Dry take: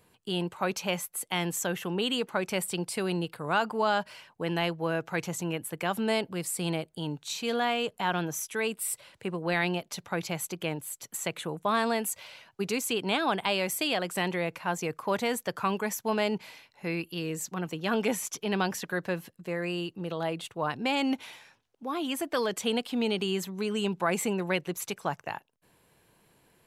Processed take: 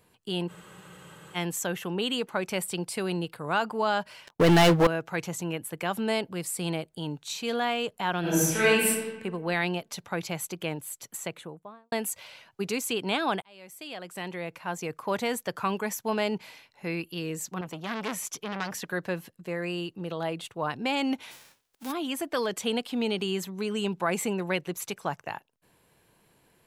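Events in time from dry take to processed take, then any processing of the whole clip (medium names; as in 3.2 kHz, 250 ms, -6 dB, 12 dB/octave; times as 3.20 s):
0.52 s: spectral freeze 0.84 s
4.27–4.87 s: waveshaping leveller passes 5
8.20–8.87 s: reverb throw, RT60 1.3 s, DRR -10.5 dB
11.03–11.92 s: studio fade out
13.42–15.20 s: fade in
17.61–18.79 s: transformer saturation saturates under 2.2 kHz
21.30–21.91 s: formants flattened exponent 0.3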